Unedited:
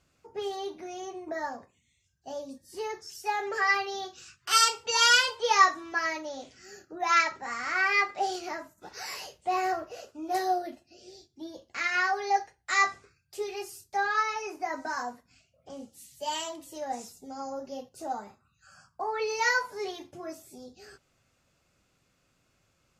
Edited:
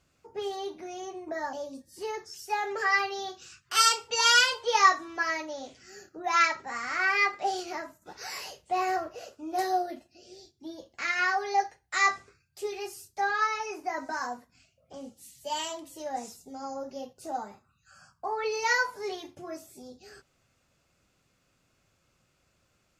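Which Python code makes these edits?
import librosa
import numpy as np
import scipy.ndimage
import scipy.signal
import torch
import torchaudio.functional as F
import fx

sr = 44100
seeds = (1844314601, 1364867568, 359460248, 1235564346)

y = fx.edit(x, sr, fx.cut(start_s=1.53, length_s=0.76), tone=tone)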